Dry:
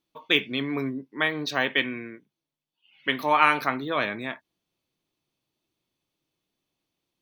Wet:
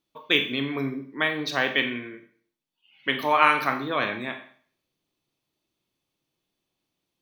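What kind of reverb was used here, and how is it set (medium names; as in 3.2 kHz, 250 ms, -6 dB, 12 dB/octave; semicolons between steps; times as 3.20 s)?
Schroeder reverb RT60 0.5 s, combs from 29 ms, DRR 6.5 dB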